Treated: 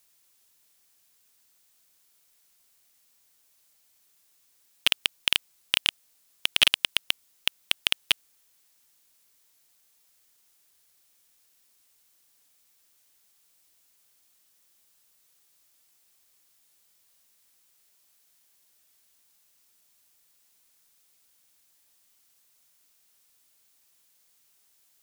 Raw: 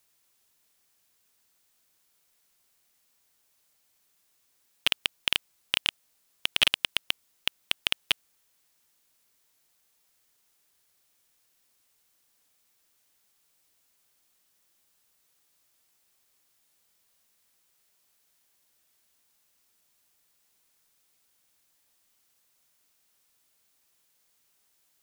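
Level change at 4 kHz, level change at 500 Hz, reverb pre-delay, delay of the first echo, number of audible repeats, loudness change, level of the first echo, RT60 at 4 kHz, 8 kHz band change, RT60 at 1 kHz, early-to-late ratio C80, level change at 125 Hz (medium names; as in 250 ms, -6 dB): +3.0 dB, 0.0 dB, no reverb, no echo, no echo, +2.5 dB, no echo, no reverb, +4.5 dB, no reverb, no reverb, 0.0 dB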